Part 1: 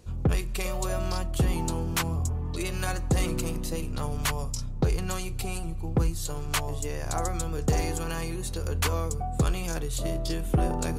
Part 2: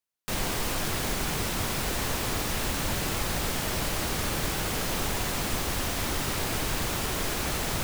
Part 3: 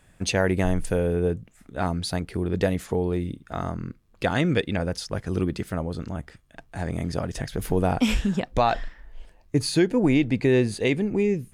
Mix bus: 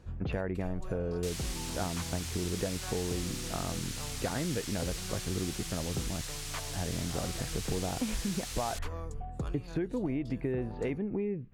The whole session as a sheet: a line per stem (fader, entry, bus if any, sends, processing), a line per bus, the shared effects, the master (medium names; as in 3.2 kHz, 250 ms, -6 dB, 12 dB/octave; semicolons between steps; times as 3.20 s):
-1.5 dB, 0.00 s, bus A, no send, auto duck -9 dB, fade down 0.25 s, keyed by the third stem
-2.0 dB, 0.95 s, no bus, no send, low-pass 7.1 kHz 12 dB/octave; differentiator
-4.0 dB, 0.00 s, bus A, no send, Bessel low-pass 2.1 kHz, order 4
bus A: 0.0 dB, low-pass 2.5 kHz 6 dB/octave; compression 5:1, threshold -30 dBFS, peak gain reduction 10 dB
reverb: none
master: none